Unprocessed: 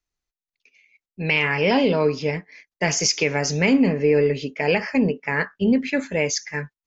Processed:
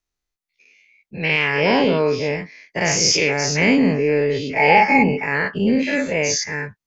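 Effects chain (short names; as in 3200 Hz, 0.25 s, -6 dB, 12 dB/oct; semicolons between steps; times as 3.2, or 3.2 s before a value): spectral dilation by 0.12 s; 4.57–5.23 small resonant body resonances 830/2200 Hz, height 17 dB; gain -2.5 dB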